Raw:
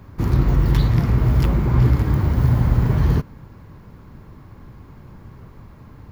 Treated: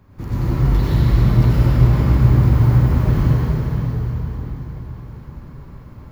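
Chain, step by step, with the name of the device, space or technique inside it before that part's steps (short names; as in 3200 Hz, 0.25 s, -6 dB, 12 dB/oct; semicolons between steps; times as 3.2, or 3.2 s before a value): cathedral (reverb RT60 4.6 s, pre-delay 82 ms, DRR -9.5 dB); gain -8.5 dB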